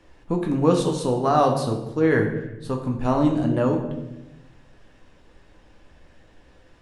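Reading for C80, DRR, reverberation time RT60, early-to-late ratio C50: 9.0 dB, 1.5 dB, 0.95 s, 6.5 dB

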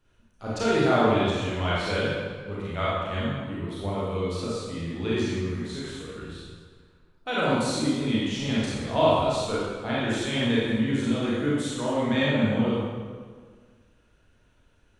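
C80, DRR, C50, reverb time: −0.5 dB, −8.5 dB, −4.0 dB, 1.7 s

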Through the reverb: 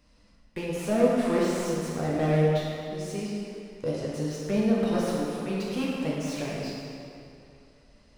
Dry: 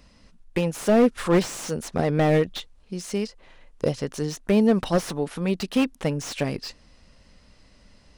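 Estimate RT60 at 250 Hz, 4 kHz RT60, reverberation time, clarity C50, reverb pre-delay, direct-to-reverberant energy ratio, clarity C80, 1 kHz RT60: 2.7 s, 1.9 s, 2.6 s, −2.5 dB, 8 ms, −5.5 dB, −0.5 dB, 2.6 s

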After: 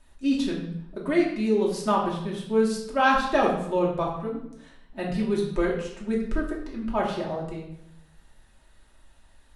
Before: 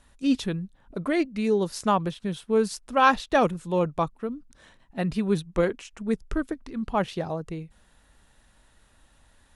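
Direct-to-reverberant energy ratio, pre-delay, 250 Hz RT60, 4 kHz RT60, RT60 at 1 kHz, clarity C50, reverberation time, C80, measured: −4.0 dB, 3 ms, 0.90 s, 0.65 s, 0.70 s, 4.5 dB, 0.75 s, 7.0 dB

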